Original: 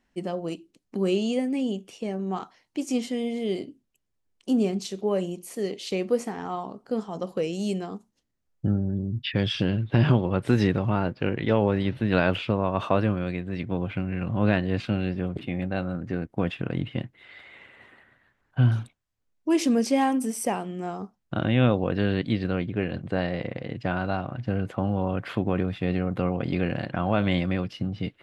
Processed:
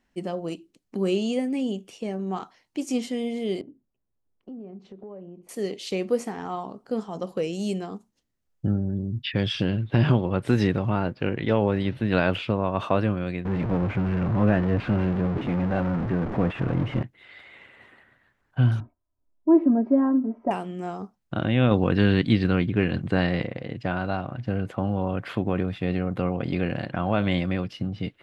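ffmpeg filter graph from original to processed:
ffmpeg -i in.wav -filter_complex "[0:a]asettb=1/sr,asplit=3[link_01][link_02][link_03];[link_01]atrim=end=3.614[link_04];[link_02]atrim=start=3.61:end=5.49,asetpts=PTS-STARTPTS,afade=type=in:duration=0.004:curve=qsin,afade=type=out:start_time=1.876:duration=0.004:curve=qsin,lowpass=1100,acompressor=threshold=-40dB:ratio=4:attack=3.2:release=140:knee=1:detection=peak[link_05];[link_03]atrim=start=5.486[link_06];[link_04][link_05]acrossfade=duration=0.004:curve1=hsin:curve2=qsin[link_07];[link_07][link_06]acrossfade=duration=0.004:curve1=qsin:curve2=hsin,asettb=1/sr,asplit=3[link_08][link_09][link_10];[link_08]atrim=end=13.454[link_11];[link_09]atrim=start=13.45:end=17.03,asetpts=PTS-STARTPTS,afade=type=in:duration=0.004:curve=qsin,afade=type=out:start_time=3.576:duration=0.004:curve=qsin,aeval=exprs='val(0)+0.5*0.0631*sgn(val(0))':channel_layout=same,lowpass=1500[link_12];[link_10]atrim=start=17.026[link_13];[link_11][link_12]acrossfade=duration=0.004:curve1=hsin:curve2=qsin[link_14];[link_14][link_13]acrossfade=duration=0.004:curve1=qsin:curve2=hsin,asettb=1/sr,asplit=3[link_15][link_16][link_17];[link_15]atrim=end=18.804[link_18];[link_16]atrim=start=18.8:end=20.51,asetpts=PTS-STARTPTS,afade=type=in:duration=0.004:curve=qsin,afade=type=out:start_time=1.706:duration=0.004:curve=qsin,lowpass=frequency=1100:width=0.5412,lowpass=frequency=1100:width=1.3066,aecho=1:1:3.1:0.89,atrim=end_sample=75411[link_19];[link_17]atrim=start=20.506[link_20];[link_18][link_19]acrossfade=duration=0.004:curve1=hsin:curve2=qsin[link_21];[link_21][link_20]acrossfade=duration=0.004:curve1=qsin:curve2=hsin,asettb=1/sr,asplit=3[link_22][link_23][link_24];[link_22]atrim=end=21.714[link_25];[link_23]atrim=start=21.71:end=23.45,asetpts=PTS-STARTPTS,afade=type=in:duration=0.004:curve=qsin,afade=type=out:start_time=1.736:duration=0.004:curve=qsin,equalizer=frequency=590:width_type=o:width=0.78:gain=-6,acontrast=48[link_26];[link_24]atrim=start=23.446[link_27];[link_25][link_26]acrossfade=duration=0.004:curve1=hsin:curve2=qsin[link_28];[link_28][link_27]acrossfade=duration=0.004:curve1=qsin:curve2=hsin" out.wav

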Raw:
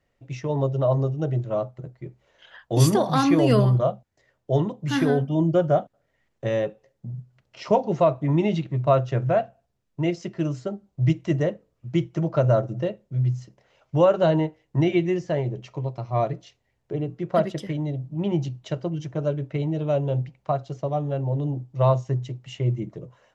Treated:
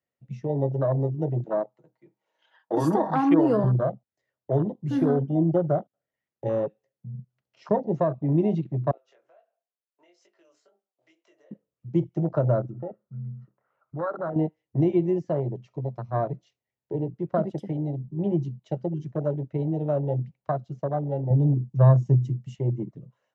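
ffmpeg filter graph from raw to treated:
ffmpeg -i in.wav -filter_complex "[0:a]asettb=1/sr,asplit=3[link_01][link_02][link_03];[link_01]atrim=end=1.444[link_04];[link_02]atrim=start=1.44:end=3.64,asetpts=PTS-STARTPTS,afade=type=in:duration=0.004:curve=qsin,afade=type=out:start_time=2.196:duration=0.004:curve=qsin,highpass=frequency=190:width=0.5412,highpass=frequency=190:width=1.3066,equalizer=frequency=890:width=5.4:gain=11,aecho=1:1:6.3:0.44,atrim=end_sample=97020[link_05];[link_03]atrim=start=3.636[link_06];[link_04][link_05]acrossfade=duration=0.004:curve1=hsin:curve2=qsin[link_07];[link_07][link_06]acrossfade=duration=0.004:curve1=qsin:curve2=hsin,asettb=1/sr,asplit=3[link_08][link_09][link_10];[link_08]atrim=end=8.914[link_11];[link_09]atrim=start=8.91:end=11.51,asetpts=PTS-STARTPTS,afade=type=in:duration=0.004:curve=qsin,afade=type=out:start_time=2.596:duration=0.004:curve=qsin,highpass=frequency=450:width=0.5412,highpass=frequency=450:width=1.3066,acompressor=threshold=-39dB:ratio=4:attack=3.2:release=140:knee=1:detection=peak,flanger=delay=19.5:depth=3.4:speed=2.1[link_12];[link_10]atrim=start=11.506[link_13];[link_11][link_12]acrossfade=duration=0.004:curve1=hsin:curve2=qsin[link_14];[link_14][link_13]acrossfade=duration=0.004:curve1=qsin:curve2=hsin,asettb=1/sr,asplit=3[link_15][link_16][link_17];[link_15]atrim=end=12.704[link_18];[link_16]atrim=start=12.7:end=14.36,asetpts=PTS-STARTPTS,afade=type=in:duration=0.004:curve=qsin,afade=type=out:start_time=1.656:duration=0.004:curve=qsin,acompressor=threshold=-35dB:ratio=2.5:attack=3.2:release=140:knee=1:detection=peak,lowpass=frequency=1300:width_type=q:width=6.7[link_19];[link_17]atrim=start=14.356[link_20];[link_18][link_19]acrossfade=duration=0.004:curve1=hsin:curve2=qsin[link_21];[link_21][link_20]acrossfade=duration=0.004:curve1=qsin:curve2=hsin,asettb=1/sr,asplit=3[link_22][link_23][link_24];[link_22]atrim=end=21.304[link_25];[link_23]atrim=start=21.3:end=22.56,asetpts=PTS-STARTPTS,afade=type=in:duration=0.004:curve=qsin,afade=type=out:start_time=1.256:duration=0.004:curve=qsin,bass=frequency=250:gain=9,treble=frequency=4000:gain=9,bandreject=frequency=4000:width=29[link_26];[link_24]atrim=start=22.556[link_27];[link_25][link_26]acrossfade=duration=0.004:curve1=hsin:curve2=qsin[link_28];[link_28][link_27]acrossfade=duration=0.004:curve1=qsin:curve2=hsin,afwtdn=0.0501,acrossover=split=370[link_29][link_30];[link_30]acompressor=threshold=-25dB:ratio=3[link_31];[link_29][link_31]amix=inputs=2:normalize=0,highpass=120" out.wav

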